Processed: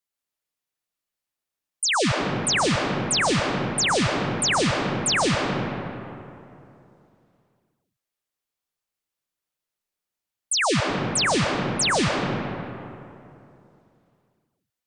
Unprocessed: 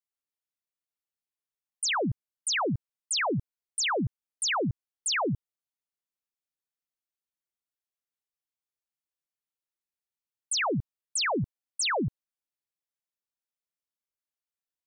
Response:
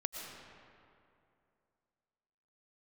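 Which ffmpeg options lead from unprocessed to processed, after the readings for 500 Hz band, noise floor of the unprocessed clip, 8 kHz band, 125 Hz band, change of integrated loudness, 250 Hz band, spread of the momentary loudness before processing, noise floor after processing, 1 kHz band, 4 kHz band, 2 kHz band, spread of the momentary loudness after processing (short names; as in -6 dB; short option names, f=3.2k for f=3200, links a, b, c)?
+8.5 dB, under -85 dBFS, +6.5 dB, +7.5 dB, +7.0 dB, +8.5 dB, 7 LU, under -85 dBFS, +8.0 dB, +7.0 dB, +7.5 dB, 13 LU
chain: -filter_complex "[1:a]atrim=start_sample=2205,asetrate=41013,aresample=44100[a];[0:a][a]afir=irnorm=-1:irlink=0,volume=6.5dB"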